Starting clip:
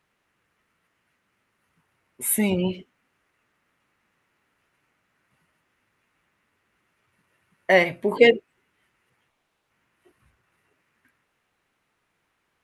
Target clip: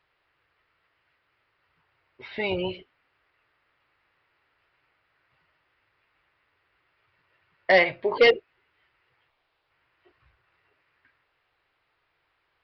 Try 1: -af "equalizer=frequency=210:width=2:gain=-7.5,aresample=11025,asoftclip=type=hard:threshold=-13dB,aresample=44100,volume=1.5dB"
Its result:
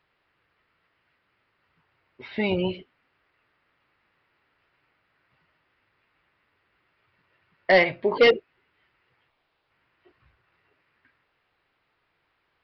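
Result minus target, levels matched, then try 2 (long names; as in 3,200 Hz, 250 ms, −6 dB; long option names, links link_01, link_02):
250 Hz band +4.5 dB
-af "equalizer=frequency=210:width=2:gain=-18.5,aresample=11025,asoftclip=type=hard:threshold=-13dB,aresample=44100,volume=1.5dB"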